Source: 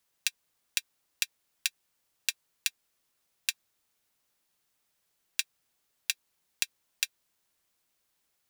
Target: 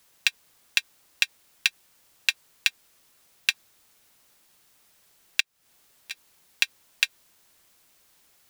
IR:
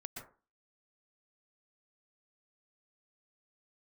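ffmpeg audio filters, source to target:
-filter_complex "[0:a]acrossover=split=4100[s0][s1];[s1]acompressor=threshold=0.0158:ratio=4:attack=1:release=60[s2];[s0][s2]amix=inputs=2:normalize=0,asplit=2[s3][s4];[s4]alimiter=limit=0.0841:level=0:latency=1:release=83,volume=0.944[s5];[s3][s5]amix=inputs=2:normalize=0,asettb=1/sr,asplit=3[s6][s7][s8];[s6]atrim=end=5.404[s9];[s7]atrim=start=5.4:end=6.11,asetpts=PTS-STARTPTS,afade=t=in:d=0.004:c=qsin,afade=t=out:st=0.706:d=0.004:c=qsin,acompressor=threshold=0.00178:ratio=8[s10];[s8]atrim=start=6.106[s11];[s9][s10]acrossfade=d=0.004:c1=hsin:c2=qsin[s12];[s12][s11]acrossfade=d=0.004:c1=qsin:c2=hsin,volume=2.82"

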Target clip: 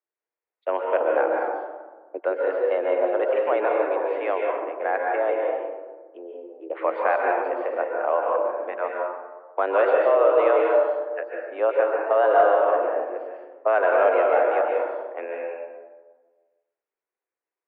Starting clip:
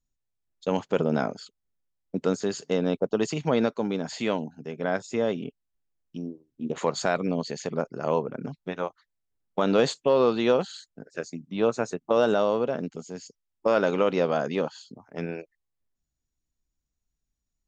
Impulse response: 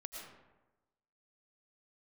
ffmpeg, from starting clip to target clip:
-filter_complex "[0:a]highpass=f=330:t=q:w=0.5412,highpass=f=330:t=q:w=1.307,lowpass=f=2300:t=q:w=0.5176,lowpass=f=2300:t=q:w=0.7071,lowpass=f=2300:t=q:w=1.932,afreqshift=91[s0];[1:a]atrim=start_sample=2205,asetrate=33075,aresample=44100[s1];[s0][s1]afir=irnorm=-1:irlink=0,acontrast=68"

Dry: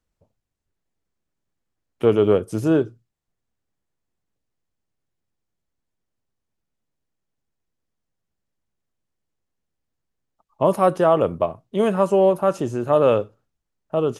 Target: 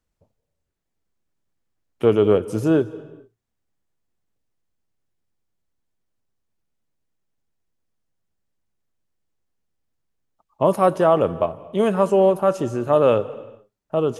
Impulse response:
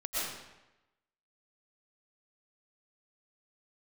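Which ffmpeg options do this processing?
-filter_complex "[0:a]asplit=2[s0][s1];[1:a]atrim=start_sample=2205,afade=t=out:st=0.38:d=0.01,atrim=end_sample=17199,asetrate=31752,aresample=44100[s2];[s1][s2]afir=irnorm=-1:irlink=0,volume=0.0531[s3];[s0][s3]amix=inputs=2:normalize=0"

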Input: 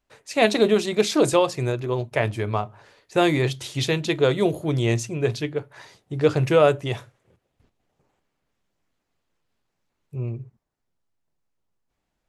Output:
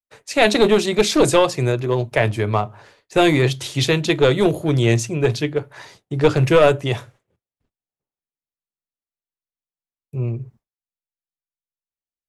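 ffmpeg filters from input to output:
-filter_complex "[0:a]agate=range=0.0224:threshold=0.00355:ratio=3:detection=peak,acrossover=split=110|1200[s0][s1][s2];[s1]aeval=exprs='clip(val(0),-1,0.119)':c=same[s3];[s0][s3][s2]amix=inputs=3:normalize=0,volume=1.88"

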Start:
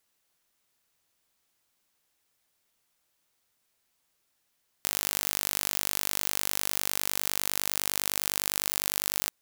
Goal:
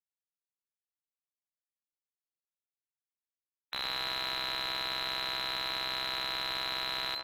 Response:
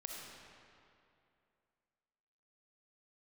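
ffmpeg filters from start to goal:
-filter_complex "[0:a]afftfilt=real='re*gte(hypot(re,im),0.00891)':imag='im*gte(hypot(re,im),0.00891)':win_size=1024:overlap=0.75,bandreject=f=50:t=h:w=6,bandreject=f=100:t=h:w=6,acontrast=51,lowpass=f=2700:t=q:w=0.5098,lowpass=f=2700:t=q:w=0.6013,lowpass=f=2700:t=q:w=0.9,lowpass=f=2700:t=q:w=2.563,afreqshift=-3200,asetrate=57330,aresample=44100,asplit=2[s0][s1];[s1]adelay=117,lowpass=f=1200:p=1,volume=0.15,asplit=2[s2][s3];[s3]adelay=117,lowpass=f=1200:p=1,volume=0.52,asplit=2[s4][s5];[s5]adelay=117,lowpass=f=1200:p=1,volume=0.52,asplit=2[s6][s7];[s7]adelay=117,lowpass=f=1200:p=1,volume=0.52,asplit=2[s8][s9];[s9]adelay=117,lowpass=f=1200:p=1,volume=0.52[s10];[s2][s4][s6][s8][s10]amix=inputs=5:normalize=0[s11];[s0][s11]amix=inputs=2:normalize=0,asplit=2[s12][s13];[s13]highpass=f=720:p=1,volume=44.7,asoftclip=type=tanh:threshold=0.1[s14];[s12][s14]amix=inputs=2:normalize=0,lowpass=f=1600:p=1,volume=0.501"

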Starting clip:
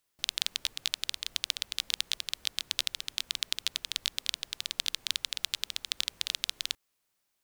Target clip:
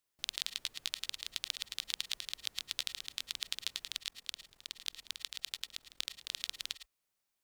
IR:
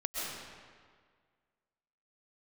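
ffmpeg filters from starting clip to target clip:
-filter_complex "[0:a]asettb=1/sr,asplit=3[s0][s1][s2];[s0]atrim=end=3.984[s3];[s1]atrim=start=3.98:end=6.32,asetpts=PTS-STARTPTS,afade=t=in:d=0.004:c=qsin,afade=t=out:st=2.336:d=0.004:c=qsin,tremolo=f=41:d=0.919[s4];[s2]atrim=start=6.316[s5];[s3][s4]acrossfade=d=0.004:c1=hsin:c2=qsin[s6];[s6][s5]acrossfade=d=0.004:c1=qsin:c2=hsin[s7];[1:a]atrim=start_sample=2205,afade=t=out:st=0.16:d=0.01,atrim=end_sample=7497[s8];[s7][s8]afir=irnorm=-1:irlink=0,volume=0.562"

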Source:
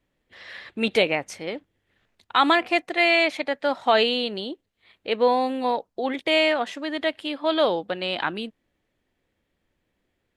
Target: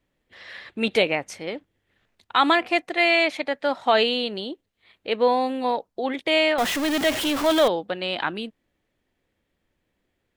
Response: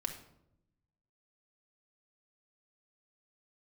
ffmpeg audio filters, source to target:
-filter_complex "[0:a]asettb=1/sr,asplit=3[s0][s1][s2];[s0]atrim=end=6.584[s3];[s1]atrim=start=6.58:end=7.68,asetpts=PTS-STARTPTS,afade=t=in:d=0.004:c=qsin,afade=t=out:st=1.096:d=0.004:c=qsin,aeval=exprs='val(0)+0.5*0.0794*sgn(val(0))':c=same[s4];[s2]atrim=start=7.676[s5];[s3][s4]acrossfade=d=0.004:c1=hsin:c2=qsin[s6];[s6][s5]acrossfade=d=0.004:c1=qsin:c2=hsin"

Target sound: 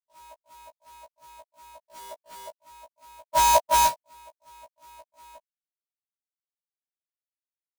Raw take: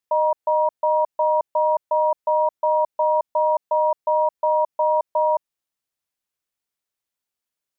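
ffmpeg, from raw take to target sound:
-filter_complex "[0:a]lowpass=1000,aeval=exprs='sgn(val(0))*max(abs(val(0))-0.00119,0)':c=same,asplit=3[s0][s1][s2];[s0]afade=t=out:st=3.23:d=0.02[s3];[s1]acontrast=46,afade=t=in:st=3.23:d=0.02,afade=t=out:st=3.86:d=0.02[s4];[s2]afade=t=in:st=3.86:d=0.02[s5];[s3][s4][s5]amix=inputs=3:normalize=0,adynamicequalizer=threshold=0.0158:dfrequency=710:dqfactor=5.6:tfrequency=710:tqfactor=5.6:attack=5:release=100:ratio=0.375:range=2.5:mode=boostabove:tftype=bell,agate=range=0.00891:threshold=0.178:ratio=16:detection=peak,asettb=1/sr,asplit=3[s6][s7][s8];[s6]atrim=end=1.884[s9];[s7]atrim=start=1.88:end=2.5,asetpts=PTS-STARTPTS,afade=t=in:d=0.004:c=qsin,afade=t=out:st=0.616:d=0.004:c=qsin,equalizer=f=560:w=0.91:g=10.5[s10];[s8]atrim=start=2.496[s11];[s9][s10]acrossfade=d=0.004:c1=hsin:c2=qsin[s12];[s12][s11]acrossfade=d=0.004:c1=qsin:c2=hsin,acrusher=bits=3:mode=log:mix=0:aa=0.000001,afftfilt=real='re*1.73*eq(mod(b,3),0)':imag='im*1.73*eq(mod(b,3),0)':win_size=2048:overlap=0.75,volume=2.11"

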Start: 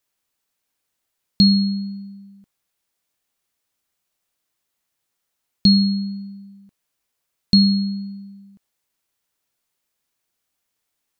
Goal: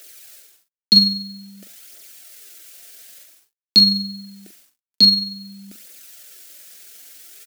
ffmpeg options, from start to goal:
-filter_complex "[0:a]highpass=f=290:w=0.5412,highpass=f=290:w=1.3066,areverse,acompressor=mode=upward:threshold=0.0126:ratio=2.5,areverse,asplit=2[s0][s1];[s1]adelay=64,lowpass=f=4000:p=1,volume=0.1,asplit=2[s2][s3];[s3]adelay=64,lowpass=f=4000:p=1,volume=0.44,asplit=2[s4][s5];[s5]adelay=64,lowpass=f=4000:p=1,volume=0.44[s6];[s0][s2][s4][s6]amix=inputs=4:normalize=0,asplit=2[s7][s8];[s8]acompressor=threshold=0.0141:ratio=16,volume=0.75[s9];[s7][s9]amix=inputs=2:normalize=0,asuperstop=centerf=980:order=8:qfactor=1.7,acrusher=bits=9:mix=0:aa=0.000001,aphaser=in_gain=1:out_gain=1:delay=4.9:decay=0.46:speed=0.34:type=triangular,atempo=1.5,acrusher=bits=8:mode=log:mix=0:aa=0.000001,highshelf=f=3300:g=7,asplit=2[s10][s11];[s11]adelay=41,volume=0.376[s12];[s10][s12]amix=inputs=2:normalize=0,volume=1.12"

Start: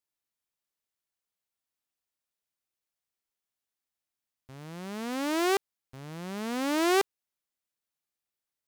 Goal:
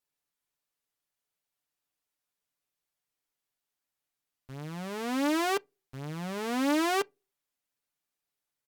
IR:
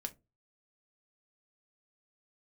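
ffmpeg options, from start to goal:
-filter_complex "[0:a]acompressor=threshold=0.0398:ratio=2.5,aecho=1:1:6.9:0.6,asplit=2[s0][s1];[1:a]atrim=start_sample=2205,lowpass=4100[s2];[s1][s2]afir=irnorm=-1:irlink=0,volume=0.251[s3];[s0][s3]amix=inputs=2:normalize=0" -ar 48000 -c:a libopus -b:a 128k

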